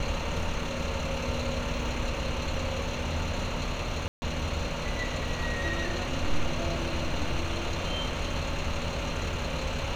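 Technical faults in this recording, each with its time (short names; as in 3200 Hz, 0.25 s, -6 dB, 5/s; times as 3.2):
4.08–4.22 gap 0.14 s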